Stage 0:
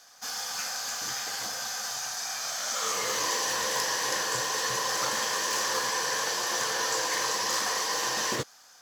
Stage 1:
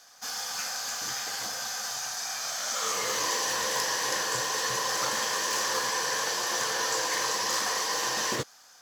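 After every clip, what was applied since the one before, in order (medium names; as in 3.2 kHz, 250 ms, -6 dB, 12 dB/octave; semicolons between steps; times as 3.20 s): no audible change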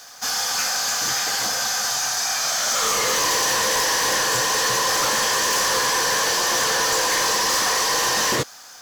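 in parallel at -10 dB: sine folder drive 12 dB, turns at -15 dBFS; on the sum: bit crusher 9-bit; trim +2.5 dB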